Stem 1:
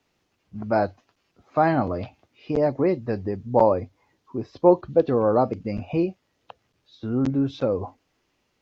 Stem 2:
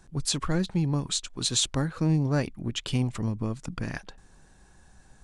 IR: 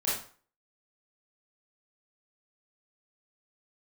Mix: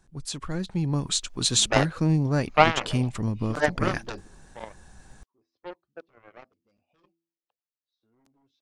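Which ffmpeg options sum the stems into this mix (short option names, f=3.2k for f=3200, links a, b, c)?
-filter_complex "[0:a]bass=f=250:g=-11,treble=f=4k:g=8,bandreject=f=83.58:t=h:w=4,bandreject=f=167.16:t=h:w=4,bandreject=f=250.74:t=h:w=4,bandreject=f=334.32:t=h:w=4,aeval=exprs='0.596*(cos(1*acos(clip(val(0)/0.596,-1,1)))-cos(1*PI/2))+0.106*(cos(7*acos(clip(val(0)/0.596,-1,1)))-cos(7*PI/2))':c=same,adelay=1000,volume=-3.5dB[a];[1:a]volume=-7dB,asplit=2[b][c];[c]apad=whole_len=424088[d];[a][d]sidechaingate=range=-32dB:threshold=-56dB:ratio=16:detection=peak[e];[e][b]amix=inputs=2:normalize=0,dynaudnorm=f=160:g=11:m=12dB"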